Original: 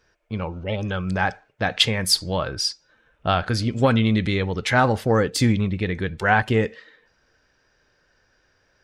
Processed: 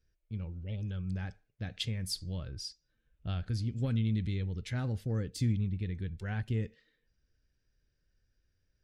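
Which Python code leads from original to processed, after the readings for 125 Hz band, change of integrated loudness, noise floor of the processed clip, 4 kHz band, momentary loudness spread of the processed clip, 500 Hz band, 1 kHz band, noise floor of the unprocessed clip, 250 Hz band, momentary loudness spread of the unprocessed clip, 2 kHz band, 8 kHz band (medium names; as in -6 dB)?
-8.0 dB, -13.5 dB, -78 dBFS, -18.5 dB, 11 LU, -22.0 dB, -28.5 dB, -65 dBFS, -13.5 dB, 10 LU, -23.5 dB, -17.0 dB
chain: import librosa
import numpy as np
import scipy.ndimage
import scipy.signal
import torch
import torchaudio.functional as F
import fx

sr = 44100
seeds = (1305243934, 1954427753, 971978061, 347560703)

y = fx.tone_stack(x, sr, knobs='10-0-1')
y = F.gain(torch.from_numpy(y), 3.5).numpy()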